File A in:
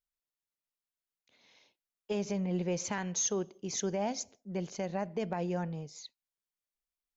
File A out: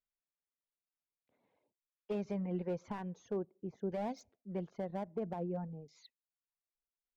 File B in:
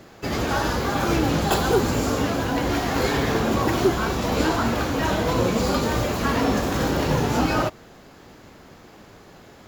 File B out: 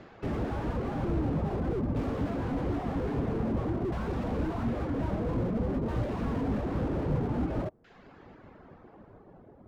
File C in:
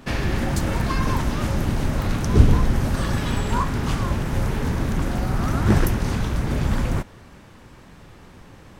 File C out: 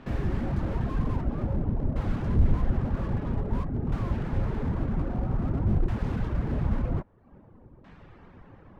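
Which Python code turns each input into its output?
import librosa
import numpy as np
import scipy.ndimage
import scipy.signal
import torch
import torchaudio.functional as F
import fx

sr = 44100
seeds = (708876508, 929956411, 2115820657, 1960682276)

y = fx.filter_lfo_lowpass(x, sr, shape='saw_down', hz=0.51, low_hz=570.0, high_hz=3000.0, q=0.72)
y = fx.dereverb_blind(y, sr, rt60_s=0.65)
y = fx.slew_limit(y, sr, full_power_hz=17.0)
y = y * 10.0 ** (-3.0 / 20.0)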